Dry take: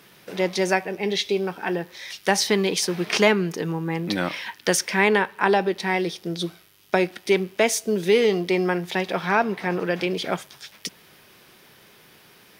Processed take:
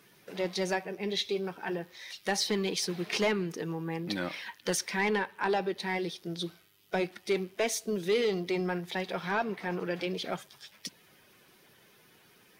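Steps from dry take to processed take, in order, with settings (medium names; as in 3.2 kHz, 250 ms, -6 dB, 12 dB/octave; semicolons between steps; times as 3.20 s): coarse spectral quantiser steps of 15 dB; dynamic bell 4.1 kHz, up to +5 dB, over -44 dBFS, Q 4.2; saturation -10 dBFS, distortion -18 dB; trim -8 dB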